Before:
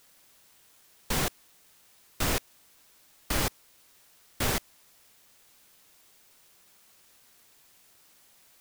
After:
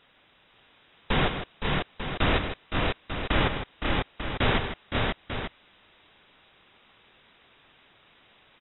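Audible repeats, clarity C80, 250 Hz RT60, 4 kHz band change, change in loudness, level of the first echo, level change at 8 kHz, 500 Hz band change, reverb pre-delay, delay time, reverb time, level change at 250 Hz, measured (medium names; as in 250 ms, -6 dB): 4, no reverb, no reverb, +5.5 dB, +2.0 dB, -12.0 dB, under -40 dB, +8.0 dB, no reverb, 98 ms, no reverb, +8.0 dB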